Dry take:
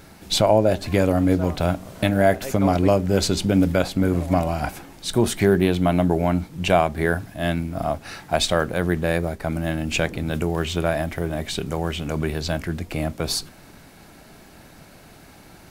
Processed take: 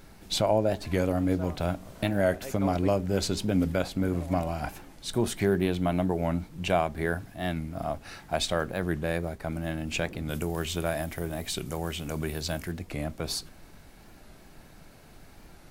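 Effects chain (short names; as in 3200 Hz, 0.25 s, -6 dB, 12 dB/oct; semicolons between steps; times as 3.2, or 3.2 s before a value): 10.29–12.72 high shelf 6600 Hz +11.5 dB; added noise brown -45 dBFS; record warp 45 rpm, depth 100 cents; gain -7.5 dB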